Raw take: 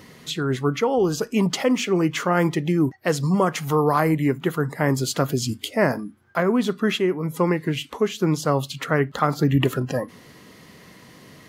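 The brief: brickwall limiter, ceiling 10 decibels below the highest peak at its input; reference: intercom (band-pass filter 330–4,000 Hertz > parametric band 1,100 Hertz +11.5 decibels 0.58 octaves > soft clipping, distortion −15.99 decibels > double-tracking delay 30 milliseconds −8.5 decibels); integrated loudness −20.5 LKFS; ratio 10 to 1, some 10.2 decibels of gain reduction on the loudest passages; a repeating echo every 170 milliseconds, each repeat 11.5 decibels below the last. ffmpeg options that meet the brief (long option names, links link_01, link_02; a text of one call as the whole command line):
ffmpeg -i in.wav -filter_complex "[0:a]acompressor=threshold=-25dB:ratio=10,alimiter=limit=-20.5dB:level=0:latency=1,highpass=330,lowpass=4000,equalizer=frequency=1100:width_type=o:width=0.58:gain=11.5,aecho=1:1:170|340|510:0.266|0.0718|0.0194,asoftclip=threshold=-22dB,asplit=2[link_01][link_02];[link_02]adelay=30,volume=-8.5dB[link_03];[link_01][link_03]amix=inputs=2:normalize=0,volume=12.5dB" out.wav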